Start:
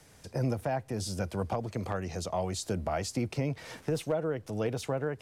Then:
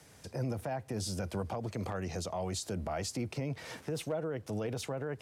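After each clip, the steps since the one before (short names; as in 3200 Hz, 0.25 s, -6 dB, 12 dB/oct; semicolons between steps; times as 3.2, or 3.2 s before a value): limiter -27 dBFS, peak gain reduction 6.5 dB; HPF 61 Hz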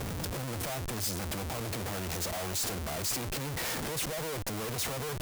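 added harmonics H 6 -30 dB, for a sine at -24.5 dBFS; Schmitt trigger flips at -53 dBFS; high shelf 6200 Hz +9 dB; gain +1 dB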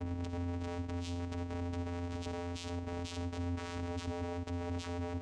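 on a send at -12 dB: reverb RT60 0.45 s, pre-delay 48 ms; on the sum: vocoder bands 4, square 87 Hz; gain -2 dB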